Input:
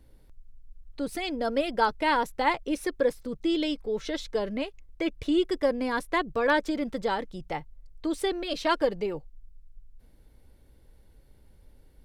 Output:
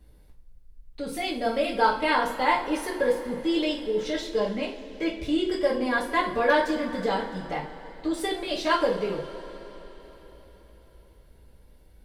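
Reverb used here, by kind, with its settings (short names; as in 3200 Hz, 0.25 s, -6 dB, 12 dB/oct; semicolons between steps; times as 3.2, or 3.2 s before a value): two-slope reverb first 0.33 s, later 4.4 s, from -21 dB, DRR -4.5 dB; gain -3 dB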